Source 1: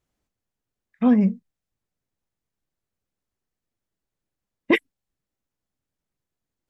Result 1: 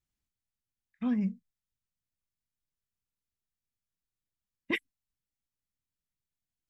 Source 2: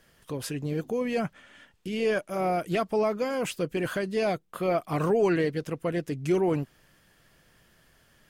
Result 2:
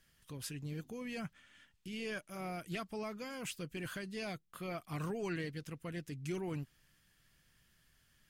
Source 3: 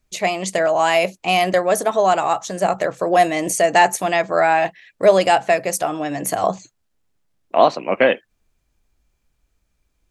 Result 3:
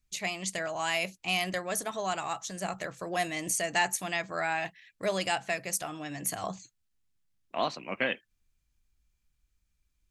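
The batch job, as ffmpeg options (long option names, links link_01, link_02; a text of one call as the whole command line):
ffmpeg -i in.wav -af "equalizer=frequency=550:width_type=o:width=2.3:gain=-12.5,volume=-6.5dB" out.wav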